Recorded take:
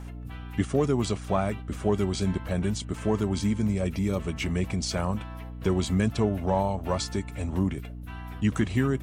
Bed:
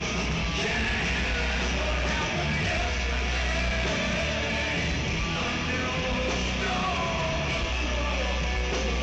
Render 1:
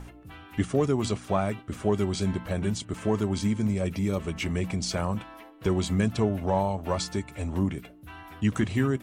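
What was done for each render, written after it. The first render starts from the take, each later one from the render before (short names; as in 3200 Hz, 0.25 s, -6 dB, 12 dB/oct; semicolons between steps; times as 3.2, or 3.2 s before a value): de-hum 60 Hz, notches 4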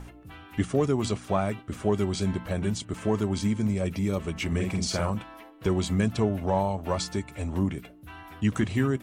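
4.47–5.1 doubler 48 ms -4 dB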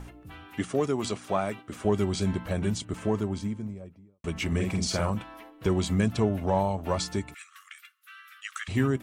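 0.5–1.85 HPF 270 Hz 6 dB/oct; 2.76–4.24 studio fade out; 7.34–8.68 brick-wall FIR high-pass 1100 Hz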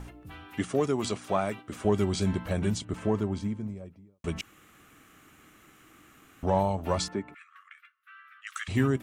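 2.79–3.68 high shelf 4400 Hz -6 dB; 4.41–6.43 room tone; 7.08–8.47 three-band isolator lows -18 dB, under 160 Hz, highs -23 dB, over 2300 Hz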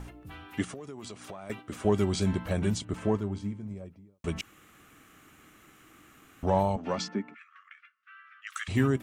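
0.64–1.5 compressor 10:1, threshold -38 dBFS; 3.17–3.71 resonator 100 Hz, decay 0.22 s; 6.76–8.5 speaker cabinet 210–6000 Hz, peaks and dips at 220 Hz +10 dB, 360 Hz -4 dB, 630 Hz -5 dB, 1000 Hz -4 dB, 3900 Hz -5 dB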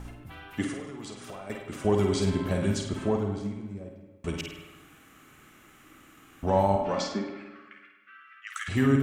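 flutter echo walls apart 8.7 m, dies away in 0.46 s; spring tank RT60 1.2 s, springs 54/58 ms, chirp 70 ms, DRR 5 dB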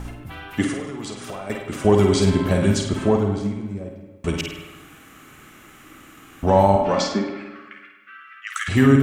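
gain +8.5 dB; limiter -3 dBFS, peak gain reduction 1.5 dB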